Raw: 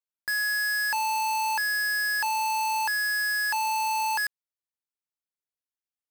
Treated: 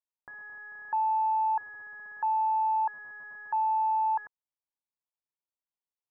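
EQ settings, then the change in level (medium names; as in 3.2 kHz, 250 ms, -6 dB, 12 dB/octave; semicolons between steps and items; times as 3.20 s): four-pole ladder low-pass 1.1 kHz, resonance 55%; distance through air 120 m; +3.0 dB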